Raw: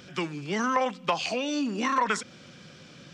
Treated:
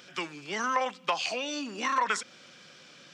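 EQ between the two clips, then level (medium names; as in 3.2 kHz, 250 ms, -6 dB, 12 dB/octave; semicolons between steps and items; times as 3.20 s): high-pass 710 Hz 6 dB/octave; 0.0 dB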